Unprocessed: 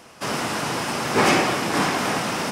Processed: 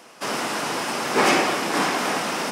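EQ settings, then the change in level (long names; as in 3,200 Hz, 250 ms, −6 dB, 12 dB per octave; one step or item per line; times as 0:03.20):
high-pass filter 230 Hz 12 dB per octave
0.0 dB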